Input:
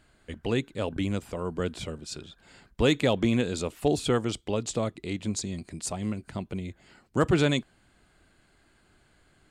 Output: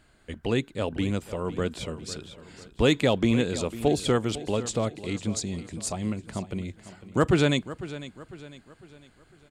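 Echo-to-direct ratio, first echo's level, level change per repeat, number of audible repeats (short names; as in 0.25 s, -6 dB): -14.0 dB, -15.0 dB, -7.5 dB, 3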